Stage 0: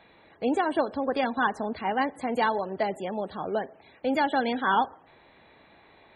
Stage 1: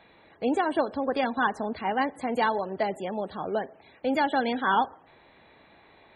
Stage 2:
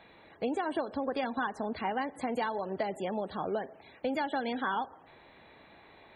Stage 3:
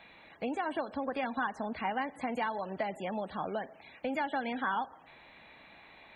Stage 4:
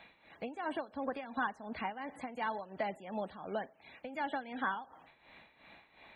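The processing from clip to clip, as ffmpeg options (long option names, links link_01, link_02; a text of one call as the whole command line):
ffmpeg -i in.wav -af anull out.wav
ffmpeg -i in.wav -af "acompressor=threshold=-29dB:ratio=6" out.wav
ffmpeg -i in.wav -filter_complex "[0:a]acrossover=split=2600[link_01][link_02];[link_02]acompressor=threshold=-60dB:ratio=4:attack=1:release=60[link_03];[link_01][link_03]amix=inputs=2:normalize=0,equalizer=frequency=100:width_type=o:width=0.67:gain=-6,equalizer=frequency=400:width_type=o:width=0.67:gain=-7,equalizer=frequency=2500:width_type=o:width=0.67:gain=6,equalizer=frequency=6300:width_type=o:width=0.67:gain=5" out.wav
ffmpeg -i in.wav -af "tremolo=f=2.8:d=0.75,volume=-1dB" out.wav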